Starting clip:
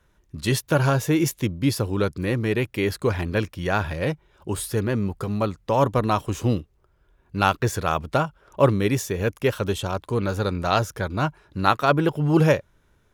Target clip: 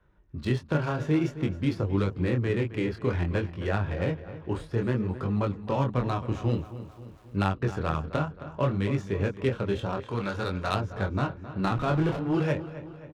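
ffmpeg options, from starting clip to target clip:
-filter_complex "[0:a]asettb=1/sr,asplit=3[a][b][c];[a]atrim=end=11.644[d];[b]atrim=start=11.64:end=12.17,asetpts=PTS-STARTPTS,afade=t=in:d=0.004:c=qsin,afade=t=out:st=0.526:d=0.004:c=qsin,aeval=exprs='val(0)+0.5*0.0794*sgn(val(0))':c=same[e];[c]atrim=start=12.166[f];[d][e]acrossfade=d=0.004:c1=hsin:c2=qsin[g];[g][f]acrossfade=d=0.004:c1=qsin:c2=hsin,acrossover=split=330|1400[h][i][j];[h]acompressor=threshold=-24dB:ratio=4[k];[i]acompressor=threshold=-30dB:ratio=4[l];[j]acompressor=threshold=-35dB:ratio=4[m];[k][l][m]amix=inputs=3:normalize=0,flanger=delay=20:depth=6.6:speed=0.55,asplit=2[n][o];[o]aecho=0:1:266|532|798|1064|1330:0.211|0.114|0.0616|0.0333|0.018[p];[n][p]amix=inputs=2:normalize=0,adynamicsmooth=sensitivity=4:basefreq=2.3k,asettb=1/sr,asplit=3[q][r][s];[q]atrim=end=6.554[t];[r]atrim=start=6.55:end=7.39,asetpts=PTS-STARTPTS,afade=t=in:d=0.004:c=qsin,afade=t=out:st=0.836:d=0.004:c=qsin,aeval=exprs='val(0)*gte(abs(val(0)),0.00112)':c=same[u];[s]atrim=start=7.386[v];[t][u]acrossfade=d=0.004:c1=hsin:c2=qsin[w];[w][v]acrossfade=d=0.004:c1=qsin:c2=hsin,asettb=1/sr,asplit=3[x][y][z];[x]atrim=end=10.004[aa];[y]atrim=start=10:end=10.75,asetpts=PTS-STARTPTS,afade=t=in:d=0.004:c=qsin,afade=t=out:st=0.746:d=0.004:c=qsin,tiltshelf=f=810:g=-5[ab];[z]atrim=start=10.746[ac];[aa][ab]acrossfade=d=0.004:c1=hsin:c2=qsin[ad];[ad][ac]acrossfade=d=0.004:c1=qsin:c2=hsin,volume=2dB"

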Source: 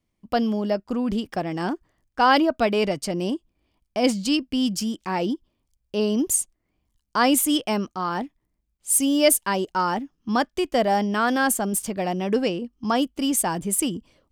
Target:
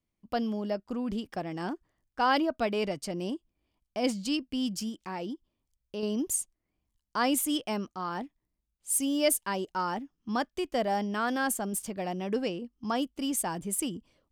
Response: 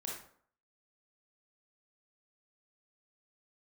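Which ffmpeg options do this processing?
-filter_complex "[0:a]asettb=1/sr,asplit=3[a][b][c];[a]atrim=end=4.894[d];[b]atrim=start=4.89:end=6.03,asetpts=PTS-STARTPTS,afade=t=in:d=0.004:c=qsin,afade=t=out:st=1.136:d=0.004:c=qsin,acompressor=threshold=-31dB:ratio=1.5[e];[c]atrim=start=6.026[f];[d][e]acrossfade=d=0.004:c1=hsin:c2=qsin[g];[g][f]acrossfade=d=0.004:c1=qsin:c2=hsin,volume=-8dB"

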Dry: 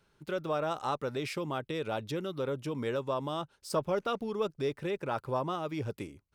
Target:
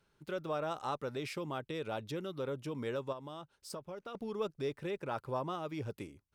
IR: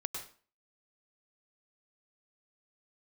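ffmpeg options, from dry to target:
-filter_complex "[1:a]atrim=start_sample=2205,atrim=end_sample=3528,asetrate=33957,aresample=44100[a];[0:a][a]afir=irnorm=-1:irlink=0,asettb=1/sr,asplit=3[b][c][d];[b]atrim=end=3.124[e];[c]atrim=start=3.12:end=4.15,asetpts=PTS-STARTPTS,afade=t=in:d=0.004:c=qsin,afade=t=out:st=1.026:d=0.004:c=qsin,acompressor=threshold=-38dB:ratio=5[f];[d]atrim=start=4.146[g];[e][f]acrossfade=d=0.004:c1=hsin:c2=qsin[h];[h][g]acrossfade=d=0.004:c1=qsin:c2=hsin,volume=-4.5dB"

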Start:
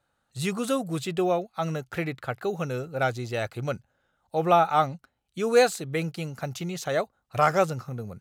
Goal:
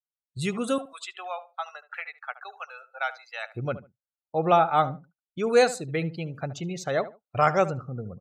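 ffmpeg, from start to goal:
-filter_complex "[0:a]agate=range=-9dB:threshold=-44dB:ratio=16:detection=peak,asettb=1/sr,asplit=3[a][b][c];[a]atrim=end=0.784[d];[b]atrim=start=0.78:end=3.54,asetpts=PTS-STARTPTS,afade=t=in:d=0.004:c=qsin,afade=t=out:st=2.756:d=0.004:c=qsin,highpass=f=840:w=0.5412,highpass=f=840:w=1.3066[e];[c]atrim=start=3.536[f];[d][e]acrossfade=d=0.004:c1=hsin:c2=qsin[g];[g][f]acrossfade=d=0.004:c1=qsin:c2=hsin,afftdn=nr=29:nf=-41,asplit=2[h][i];[i]adelay=73,lowpass=f=1.6k:p=1,volume=-14dB,asplit=2[j][k];[k]adelay=73,lowpass=f=1.6k:p=1,volume=0.22[l];[h][j][l]amix=inputs=3:normalize=0"

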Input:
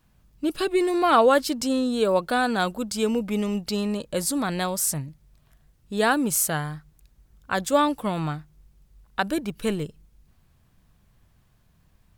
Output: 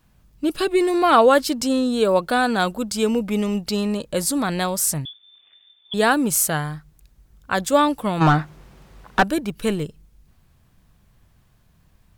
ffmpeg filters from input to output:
-filter_complex "[0:a]asettb=1/sr,asplit=3[a][b][c];[a]atrim=end=5.054[d];[b]atrim=start=5.05:end=5.94,asetpts=PTS-STARTPTS,afade=t=in:d=0.004:c=qsin,afade=t=out:st=0.886:d=0.004:c=qsin,lowpass=f=3.1k:t=q:w=0.5098,lowpass=f=3.1k:t=q:w=0.6013,lowpass=f=3.1k:t=q:w=0.9,lowpass=f=3.1k:t=q:w=2.563,afreqshift=-3600[e];[c]atrim=start=5.936[f];[d][e]acrossfade=d=0.004:c1=hsin:c2=qsin[g];[g][f]acrossfade=d=0.004:c1=qsin:c2=hsin,asplit=3[h][i][j];[h]afade=t=out:st=8.2:d=0.02[k];[i]asplit=2[l][m];[m]highpass=f=720:p=1,volume=31dB,asoftclip=type=tanh:threshold=-7.5dB[n];[l][n]amix=inputs=2:normalize=0,lowpass=f=1.2k:p=1,volume=-6dB,afade=t=in:st=8.2:d=0.02,afade=t=out:st=9.22:d=0.02[o];[j]afade=t=in:st=9.22:d=0.02[p];[k][o][p]amix=inputs=3:normalize=0,volume=3.5dB"

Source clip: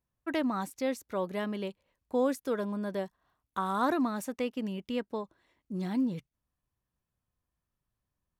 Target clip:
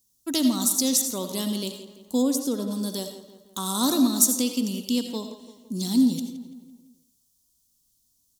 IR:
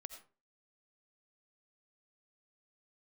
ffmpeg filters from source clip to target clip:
-filter_complex "[0:a]equalizer=f=250:t=o:w=0.67:g=10,equalizer=f=630:t=o:w=0.67:g=-4,equalizer=f=1.6k:t=o:w=0.67:g=-9,equalizer=f=6.3k:t=o:w=0.67:g=4,asplit=2[a][b];[b]adelay=169,lowpass=f=3.6k:p=1,volume=-13dB,asplit=2[c][d];[d]adelay=169,lowpass=f=3.6k:p=1,volume=0.51,asplit=2[e][f];[f]adelay=169,lowpass=f=3.6k:p=1,volume=0.51,asplit=2[g][h];[h]adelay=169,lowpass=f=3.6k:p=1,volume=0.51,asplit=2[i][j];[j]adelay=169,lowpass=f=3.6k:p=1,volume=0.51[k];[a][c][e][g][i][k]amix=inputs=6:normalize=0[l];[1:a]atrim=start_sample=2205[m];[l][m]afir=irnorm=-1:irlink=0,aexciter=amount=10.5:drive=6.1:freq=3.4k,asplit=3[n][o][p];[n]afade=t=out:st=2.21:d=0.02[q];[o]highshelf=f=2.1k:g=-10,afade=t=in:st=2.21:d=0.02,afade=t=out:st=2.7:d=0.02[r];[p]afade=t=in:st=2.7:d=0.02[s];[q][r][s]amix=inputs=3:normalize=0,volume=6.5dB"

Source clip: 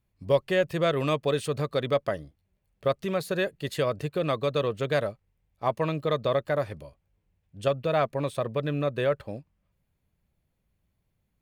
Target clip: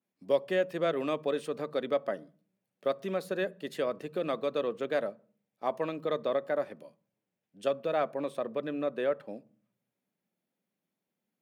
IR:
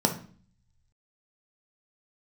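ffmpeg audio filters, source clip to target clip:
-filter_complex "[0:a]highpass=f=190:w=0.5412,highpass=f=190:w=1.3066,asplit=2[a][b];[1:a]atrim=start_sample=2205[c];[b][c]afir=irnorm=-1:irlink=0,volume=-25dB[d];[a][d]amix=inputs=2:normalize=0,adynamicequalizer=threshold=0.00631:dfrequency=2900:dqfactor=0.7:tfrequency=2900:tqfactor=0.7:attack=5:release=100:ratio=0.375:range=3:mode=cutabove:tftype=highshelf,volume=-6dB"

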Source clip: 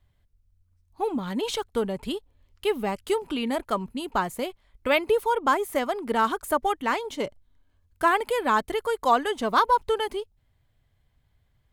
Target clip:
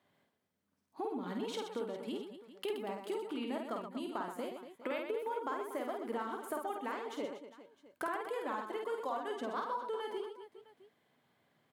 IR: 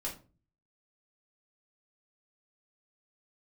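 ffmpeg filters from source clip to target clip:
-af "highpass=f=210:w=0.5412,highpass=f=210:w=1.3066,highshelf=f=2.5k:g=-8.5,acompressor=threshold=-46dB:ratio=4,aecho=1:1:50|125|237.5|406.2|659.4:0.631|0.398|0.251|0.158|0.1,volume=4.5dB"

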